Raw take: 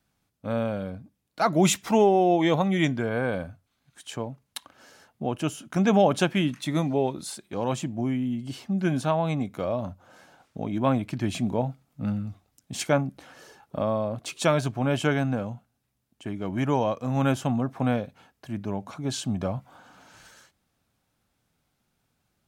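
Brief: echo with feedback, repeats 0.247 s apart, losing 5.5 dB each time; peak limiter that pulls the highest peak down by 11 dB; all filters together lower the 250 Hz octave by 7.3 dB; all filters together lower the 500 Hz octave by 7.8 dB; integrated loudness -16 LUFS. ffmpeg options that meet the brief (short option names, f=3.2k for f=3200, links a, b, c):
-af "equalizer=f=250:t=o:g=-8,equalizer=f=500:t=o:g=-8,alimiter=limit=-22dB:level=0:latency=1,aecho=1:1:247|494|741|988|1235|1482|1729:0.531|0.281|0.149|0.079|0.0419|0.0222|0.0118,volume=17dB"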